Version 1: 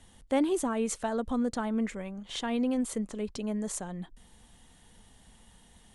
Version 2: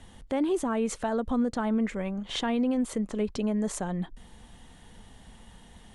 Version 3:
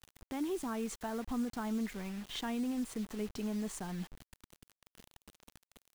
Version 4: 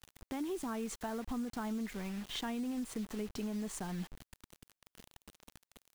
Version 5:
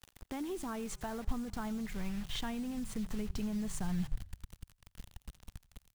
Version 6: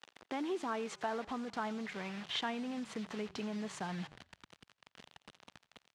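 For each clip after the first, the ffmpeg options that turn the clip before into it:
-af "aemphasis=mode=reproduction:type=cd,alimiter=level_in=2.5dB:limit=-24dB:level=0:latency=1:release=250,volume=-2.5dB,volume=7dB"
-af "equalizer=f=550:t=o:w=0.33:g=-11,acrusher=bits=6:mix=0:aa=0.000001,volume=-8.5dB"
-af "acompressor=threshold=-36dB:ratio=6,volume=1.5dB"
-filter_complex "[0:a]asplit=5[a][b][c][d][e];[b]adelay=86,afreqshift=-32,volume=-22dB[f];[c]adelay=172,afreqshift=-64,volume=-26.7dB[g];[d]adelay=258,afreqshift=-96,volume=-31.5dB[h];[e]adelay=344,afreqshift=-128,volume=-36.2dB[i];[a][f][g][h][i]amix=inputs=5:normalize=0,asubboost=boost=8.5:cutoff=120"
-af "highpass=360,lowpass=4.1k,volume=5.5dB"

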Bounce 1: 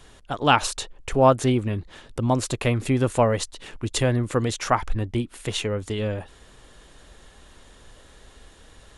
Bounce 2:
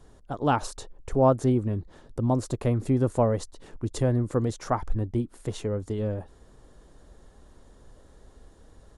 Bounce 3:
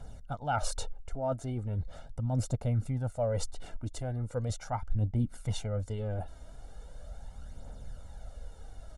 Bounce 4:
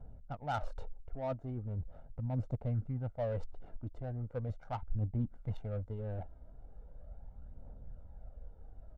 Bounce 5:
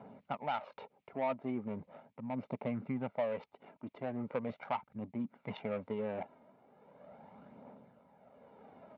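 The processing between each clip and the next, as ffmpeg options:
-af "firequalizer=gain_entry='entry(310,0);entry(2600,-17);entry(4900,-9)':delay=0.05:min_phase=1,volume=-1.5dB"
-af "aecho=1:1:1.4:0.75,areverse,acompressor=threshold=-30dB:ratio=8,areverse,aphaser=in_gain=1:out_gain=1:delay=3.3:decay=0.44:speed=0.39:type=triangular"
-af "adynamicsmooth=sensitivity=4:basefreq=810,volume=-5dB"
-af "tremolo=f=0.68:d=0.63,highpass=f=230:w=0.5412,highpass=f=230:w=1.3066,equalizer=f=310:t=q:w=4:g=-10,equalizer=f=490:t=q:w=4:g=-7,equalizer=f=720:t=q:w=4:g=-6,equalizer=f=1k:t=q:w=4:g=4,equalizer=f=1.5k:t=q:w=4:g=-7,equalizer=f=2.3k:t=q:w=4:g=8,lowpass=f=3.4k:w=0.5412,lowpass=f=3.4k:w=1.3066,acompressor=threshold=-51dB:ratio=2.5,volume=16.5dB"

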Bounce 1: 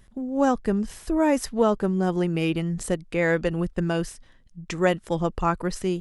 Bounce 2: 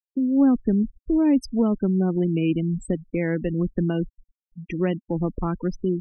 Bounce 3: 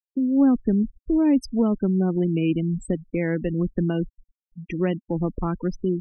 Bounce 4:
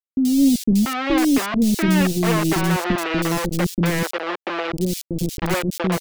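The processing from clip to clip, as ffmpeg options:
-filter_complex "[0:a]afftfilt=real='re*gte(hypot(re,im),0.0631)':imag='im*gte(hypot(re,im),0.0631)':win_size=1024:overlap=0.75,equalizer=f=270:w=1.7:g=9.5,acrossover=split=310|3000[a][b][c];[b]acompressor=threshold=-31dB:ratio=3[d];[a][d][c]amix=inputs=3:normalize=0"
-af anull
-filter_complex "[0:a]acrusher=bits=3:mix=0:aa=0.000001,acrossover=split=390|3800[a][b][c];[c]adelay=80[d];[b]adelay=690[e];[a][e][d]amix=inputs=3:normalize=0,volume=4dB"

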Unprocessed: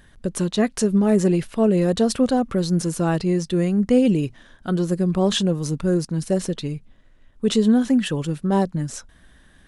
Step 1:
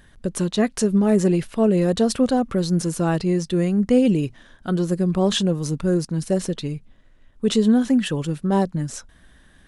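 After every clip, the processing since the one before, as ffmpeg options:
-af anull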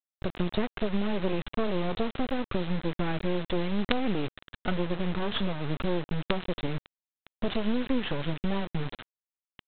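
-af "acompressor=threshold=-27dB:ratio=5,aresample=8000,acrusher=bits=4:dc=4:mix=0:aa=0.000001,aresample=44100,volume=5.5dB"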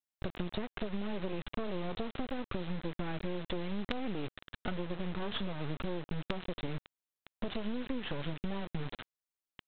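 -af "acompressor=threshold=-31dB:ratio=4,volume=-1.5dB"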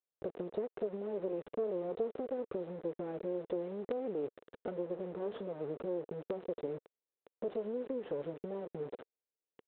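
-af "bandpass=f=460:t=q:w=3.6:csg=0,volume=8.5dB"

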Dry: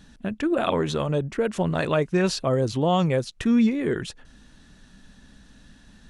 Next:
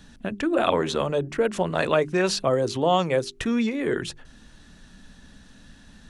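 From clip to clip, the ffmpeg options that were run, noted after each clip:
-filter_complex "[0:a]bandreject=f=50:t=h:w=6,bandreject=f=100:t=h:w=6,bandreject=f=150:t=h:w=6,bandreject=f=200:t=h:w=6,bandreject=f=250:t=h:w=6,bandreject=f=300:t=h:w=6,bandreject=f=350:t=h:w=6,bandreject=f=400:t=h:w=6,acrossover=split=300|1400[a][b][c];[a]acompressor=threshold=-34dB:ratio=6[d];[d][b][c]amix=inputs=3:normalize=0,volume=2.5dB"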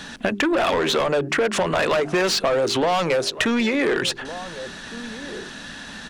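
-filter_complex "[0:a]asplit=2[a][b];[b]highpass=f=720:p=1,volume=25dB,asoftclip=type=tanh:threshold=-6dB[c];[a][c]amix=inputs=2:normalize=0,lowpass=f=4.1k:p=1,volume=-6dB,asplit=2[d][e];[e]adelay=1458,volume=-20dB,highshelf=f=4k:g=-32.8[f];[d][f]amix=inputs=2:normalize=0,acompressor=threshold=-20dB:ratio=6,volume=1.5dB"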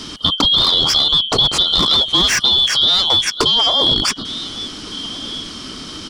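-af "afftfilt=real='real(if(lt(b,272),68*(eq(floor(b/68),0)*1+eq(floor(b/68),1)*3+eq(floor(b/68),2)*0+eq(floor(b/68),3)*2)+mod(b,68),b),0)':imag='imag(if(lt(b,272),68*(eq(floor(b/68),0)*1+eq(floor(b/68),1)*3+eq(floor(b/68),2)*0+eq(floor(b/68),3)*2)+mod(b,68),b),0)':win_size=2048:overlap=0.75,volume=6dB"

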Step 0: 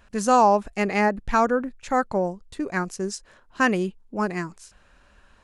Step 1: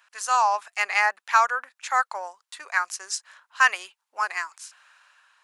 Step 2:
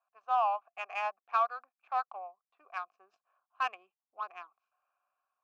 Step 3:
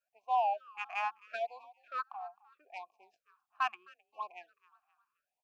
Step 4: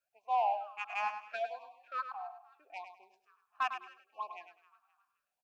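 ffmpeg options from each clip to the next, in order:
-af "highpass=f=970:w=0.5412,highpass=f=970:w=1.3066,dynaudnorm=f=140:g=7:m=5.5dB"
-filter_complex "[0:a]asubboost=boost=11:cutoff=220,adynamicsmooth=sensitivity=1:basefreq=780,asplit=3[a][b][c];[a]bandpass=f=730:t=q:w=8,volume=0dB[d];[b]bandpass=f=1.09k:t=q:w=8,volume=-6dB[e];[c]bandpass=f=2.44k:t=q:w=8,volume=-9dB[f];[d][e][f]amix=inputs=3:normalize=0,volume=2dB"
-filter_complex "[0:a]asplit=4[a][b][c][d];[b]adelay=262,afreqshift=36,volume=-21.5dB[e];[c]adelay=524,afreqshift=72,volume=-29.9dB[f];[d]adelay=786,afreqshift=108,volume=-38.3dB[g];[a][e][f][g]amix=inputs=4:normalize=0,afftfilt=real='re*(1-between(b*sr/1024,440*pow(1600/440,0.5+0.5*sin(2*PI*0.77*pts/sr))/1.41,440*pow(1600/440,0.5+0.5*sin(2*PI*0.77*pts/sr))*1.41))':imag='im*(1-between(b*sr/1024,440*pow(1600/440,0.5+0.5*sin(2*PI*0.77*pts/sr))/1.41,440*pow(1600/440,0.5+0.5*sin(2*PI*0.77*pts/sr))*1.41))':win_size=1024:overlap=0.75"
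-af "asoftclip=type=tanh:threshold=-21dB,aecho=1:1:102|204|306:0.355|0.0816|0.0188"

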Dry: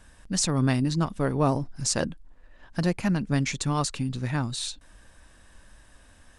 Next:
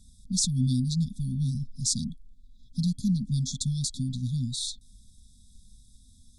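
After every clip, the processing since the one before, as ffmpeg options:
-af "afftfilt=real='re*(1-between(b*sr/4096,260,3300))':imag='im*(1-between(b*sr/4096,260,3300))':win_size=4096:overlap=0.75"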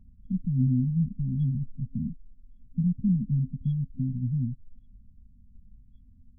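-af "afftfilt=real='re*lt(b*sr/1024,330*pow(3400/330,0.5+0.5*sin(2*PI*0.88*pts/sr)))':imag='im*lt(b*sr/1024,330*pow(3400/330,0.5+0.5*sin(2*PI*0.88*pts/sr)))':win_size=1024:overlap=0.75,volume=1.5dB"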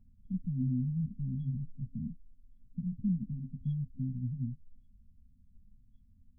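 -af "flanger=delay=8.6:depth=8.3:regen=-45:speed=0.34:shape=triangular,volume=-3.5dB"

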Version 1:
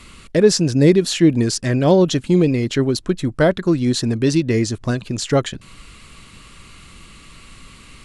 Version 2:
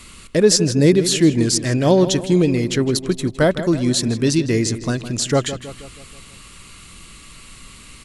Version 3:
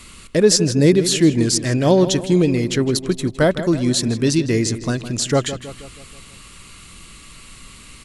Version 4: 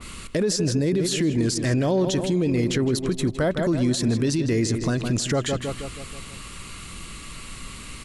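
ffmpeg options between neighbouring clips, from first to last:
-filter_complex "[0:a]highshelf=f=5.9k:g=10.5,asplit=2[a][b];[b]adelay=160,lowpass=f=3.8k:p=1,volume=-12dB,asplit=2[c][d];[d]adelay=160,lowpass=f=3.8k:p=1,volume=0.53,asplit=2[e][f];[f]adelay=160,lowpass=f=3.8k:p=1,volume=0.53,asplit=2[g][h];[h]adelay=160,lowpass=f=3.8k:p=1,volume=0.53,asplit=2[i][j];[j]adelay=160,lowpass=f=3.8k:p=1,volume=0.53,asplit=2[k][l];[l]adelay=160,lowpass=f=3.8k:p=1,volume=0.53[m];[c][e][g][i][k][m]amix=inputs=6:normalize=0[n];[a][n]amix=inputs=2:normalize=0,volume=-1dB"
-af anull
-af "acompressor=threshold=-21dB:ratio=2.5,alimiter=limit=-19dB:level=0:latency=1:release=21,adynamicequalizer=threshold=0.00447:dfrequency=2200:dqfactor=0.7:tfrequency=2200:tqfactor=0.7:attack=5:release=100:ratio=0.375:range=1.5:mode=cutabove:tftype=highshelf,volume=4.5dB"

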